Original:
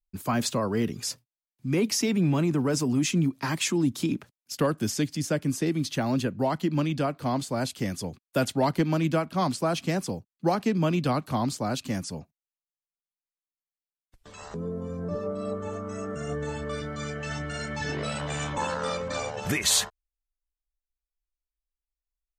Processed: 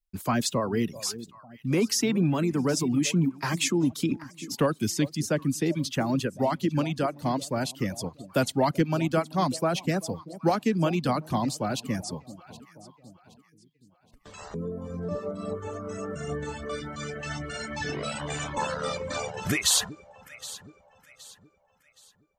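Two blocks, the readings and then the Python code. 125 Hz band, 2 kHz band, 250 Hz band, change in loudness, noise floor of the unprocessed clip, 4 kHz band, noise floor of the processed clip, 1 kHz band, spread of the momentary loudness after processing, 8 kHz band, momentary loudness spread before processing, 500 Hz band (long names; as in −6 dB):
−1.0 dB, 0.0 dB, 0.0 dB, 0.0 dB, below −85 dBFS, +0.5 dB, −64 dBFS, +0.5 dB, 13 LU, +0.5 dB, 10 LU, 0.0 dB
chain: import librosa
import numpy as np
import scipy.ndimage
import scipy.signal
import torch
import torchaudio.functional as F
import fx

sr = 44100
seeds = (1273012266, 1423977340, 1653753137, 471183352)

y = fx.echo_alternate(x, sr, ms=385, hz=890.0, feedback_pct=60, wet_db=-12.5)
y = fx.spec_box(y, sr, start_s=13.5, length_s=0.4, low_hz=480.0, high_hz=1600.0, gain_db=-26)
y = fx.dereverb_blind(y, sr, rt60_s=0.84)
y = y * librosa.db_to_amplitude(1.0)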